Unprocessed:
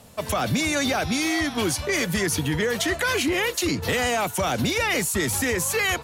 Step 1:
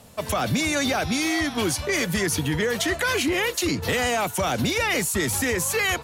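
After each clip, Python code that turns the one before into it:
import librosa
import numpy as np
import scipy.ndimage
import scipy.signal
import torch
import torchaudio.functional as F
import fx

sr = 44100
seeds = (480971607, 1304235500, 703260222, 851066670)

y = x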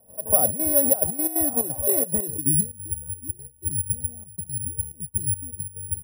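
y = fx.filter_sweep_lowpass(x, sr, from_hz=620.0, to_hz=110.0, start_s=2.2, end_s=2.72, q=2.8)
y = (np.kron(y[::4], np.eye(4)[0]) * 4)[:len(y)]
y = fx.step_gate(y, sr, bpm=177, pattern='.x.xxx.xxxx.x', floor_db=-12.0, edge_ms=4.5)
y = y * 10.0 ** (-4.5 / 20.0)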